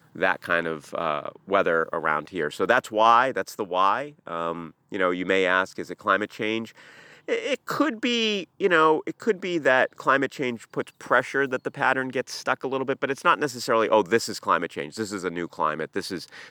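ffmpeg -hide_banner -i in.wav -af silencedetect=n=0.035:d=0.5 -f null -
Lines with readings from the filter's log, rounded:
silence_start: 6.65
silence_end: 7.29 | silence_duration: 0.64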